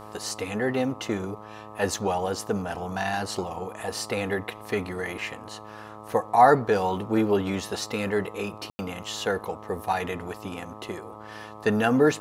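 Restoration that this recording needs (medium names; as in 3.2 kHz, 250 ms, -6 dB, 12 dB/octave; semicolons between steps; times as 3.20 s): de-hum 106.8 Hz, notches 12; room tone fill 8.70–8.79 s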